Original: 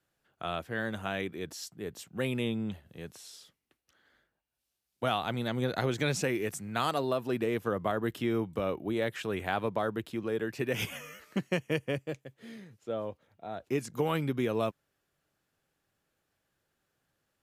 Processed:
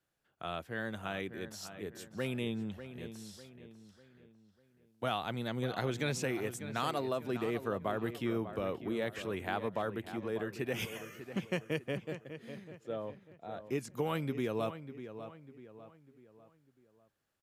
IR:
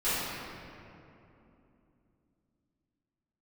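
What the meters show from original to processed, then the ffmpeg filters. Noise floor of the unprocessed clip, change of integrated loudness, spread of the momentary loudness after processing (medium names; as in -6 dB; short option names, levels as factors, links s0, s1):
-83 dBFS, -4.5 dB, 13 LU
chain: -filter_complex "[0:a]asplit=2[s0][s1];[s1]adelay=597,lowpass=f=3000:p=1,volume=0.282,asplit=2[s2][s3];[s3]adelay=597,lowpass=f=3000:p=1,volume=0.43,asplit=2[s4][s5];[s5]adelay=597,lowpass=f=3000:p=1,volume=0.43,asplit=2[s6][s7];[s7]adelay=597,lowpass=f=3000:p=1,volume=0.43[s8];[s0][s2][s4][s6][s8]amix=inputs=5:normalize=0,volume=0.596"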